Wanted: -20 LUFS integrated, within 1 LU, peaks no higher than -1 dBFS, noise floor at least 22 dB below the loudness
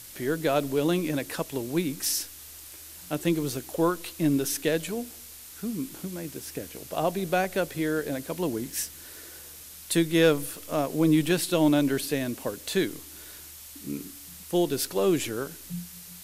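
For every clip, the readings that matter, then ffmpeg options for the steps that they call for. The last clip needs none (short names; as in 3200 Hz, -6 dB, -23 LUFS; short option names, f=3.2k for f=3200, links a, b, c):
noise floor -45 dBFS; noise floor target -50 dBFS; loudness -27.5 LUFS; peak -10.0 dBFS; loudness target -20.0 LUFS
-> -af "afftdn=nr=6:nf=-45"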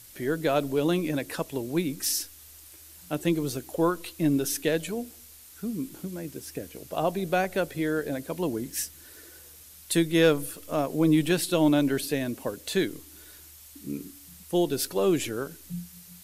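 noise floor -50 dBFS; loudness -27.5 LUFS; peak -10.5 dBFS; loudness target -20.0 LUFS
-> -af "volume=7.5dB"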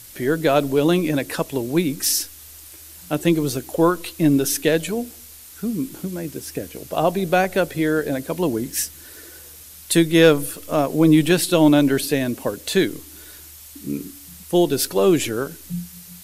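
loudness -20.0 LUFS; peak -3.0 dBFS; noise floor -42 dBFS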